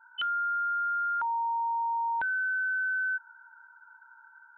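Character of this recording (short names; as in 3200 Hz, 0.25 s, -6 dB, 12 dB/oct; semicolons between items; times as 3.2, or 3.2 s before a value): noise floor -57 dBFS; spectral tilt -12.0 dB/oct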